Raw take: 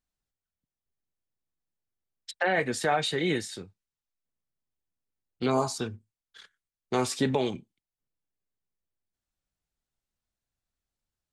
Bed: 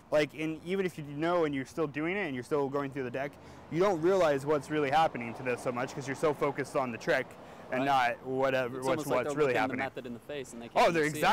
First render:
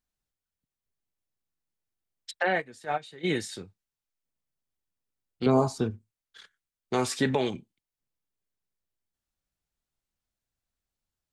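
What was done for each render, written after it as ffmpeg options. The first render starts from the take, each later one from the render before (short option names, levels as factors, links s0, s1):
-filter_complex "[0:a]asplit=3[s0][s1][s2];[s0]afade=t=out:st=2.57:d=0.02[s3];[s1]agate=range=0.126:threshold=0.0631:ratio=16:release=100:detection=peak,afade=t=in:st=2.57:d=0.02,afade=t=out:st=3.23:d=0.02[s4];[s2]afade=t=in:st=3.23:d=0.02[s5];[s3][s4][s5]amix=inputs=3:normalize=0,asettb=1/sr,asplit=3[s6][s7][s8];[s6]atrim=end=5.464[s9];[s7]atrim=start=5.46:end=5.91,asetpts=PTS-STARTPTS,afade=t=in:d=0.004:c=qsin,afade=t=out:st=0.446:d=0.004:c=qsin,tiltshelf=f=970:g=6.5[s10];[s8]atrim=start=5.906[s11];[s9][s10]acrossfade=d=0.004:c1=hsin:c2=qsin[s12];[s12][s11]acrossfade=d=0.004:c1=qsin:c2=hsin,asettb=1/sr,asplit=3[s13][s14][s15];[s13]atrim=end=7.074[s16];[s14]atrim=start=7.07:end=7.5,asetpts=PTS-STARTPTS,afade=t=in:d=0.004:c=qsin,afade=t=out:st=0.426:d=0.004:c=qsin,equalizer=f=1700:w=1.9:g=6[s17];[s15]atrim=start=7.496[s18];[s16][s17]acrossfade=d=0.004:c1=hsin:c2=qsin[s19];[s19][s18]acrossfade=d=0.004:c1=qsin:c2=hsin"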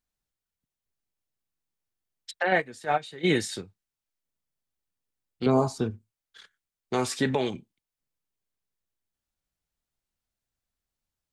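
-filter_complex "[0:a]asplit=3[s0][s1][s2];[s0]atrim=end=2.522[s3];[s1]atrim=start=2.518:end=3.612,asetpts=PTS-STARTPTS,volume=1.68[s4];[s2]atrim=start=3.608[s5];[s3][s4]acrossfade=d=0.004:c1=hsin:c2=hsin[s6];[s6][s5]acrossfade=d=0.004:c1=hsin:c2=hsin"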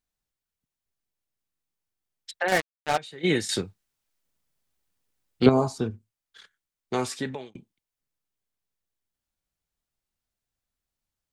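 -filter_complex "[0:a]asettb=1/sr,asplit=3[s0][s1][s2];[s0]atrim=end=2.484[s3];[s1]atrim=start=2.48:end=2.98,asetpts=PTS-STARTPTS,afade=t=in:d=0.004:c=qsin,afade=t=out:st=0.496:d=0.004:c=qsin,acrusher=bits=3:mix=0:aa=0.5[s4];[s2]atrim=start=2.976[s5];[s3][s4]acrossfade=d=0.004:c1=hsin:c2=qsin[s6];[s6][s5]acrossfade=d=0.004:c1=qsin:c2=hsin,asplit=4[s7][s8][s9][s10];[s7]atrim=end=3.492[s11];[s8]atrim=start=3.488:end=5.492,asetpts=PTS-STARTPTS,volume=2.66[s12];[s9]atrim=start=5.488:end=7.55,asetpts=PTS-STARTPTS,afade=t=out:st=1.472:d=0.59[s13];[s10]atrim=start=7.55,asetpts=PTS-STARTPTS,afade=t=in:d=0.004:c=hsin[s14];[s11][s12]acrossfade=d=0.004:c1=hsin:c2=hsin[s15];[s13][s14]concat=n=2:v=0:a=1[s16];[s15][s16]acrossfade=d=0.004:c1=hsin:c2=hsin"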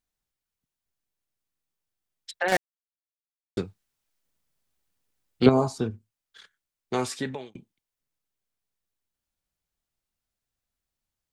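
-filter_complex "[0:a]asplit=3[s0][s1][s2];[s0]atrim=end=2.57,asetpts=PTS-STARTPTS,afade=t=out:st=2.566:d=0.004:c=hsin[s3];[s1]atrim=start=2.57:end=3.57,asetpts=PTS-STARTPTS,volume=0[s4];[s2]atrim=start=3.57,asetpts=PTS-STARTPTS,afade=t=in:d=0.004:c=hsin[s5];[s3][s4][s5]concat=n=3:v=0:a=1"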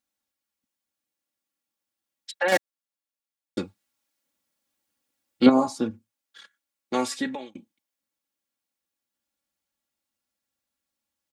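-af "highpass=130,aecho=1:1:3.6:0.81"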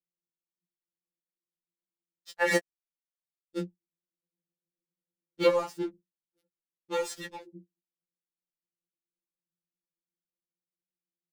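-filter_complex "[0:a]acrossover=split=400[s0][s1];[s1]aeval=exprs='sgn(val(0))*max(abs(val(0))-0.0133,0)':c=same[s2];[s0][s2]amix=inputs=2:normalize=0,afftfilt=real='re*2.83*eq(mod(b,8),0)':imag='im*2.83*eq(mod(b,8),0)':win_size=2048:overlap=0.75"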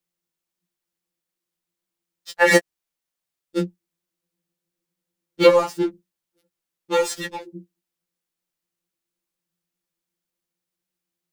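-af "volume=3.35,alimiter=limit=0.794:level=0:latency=1"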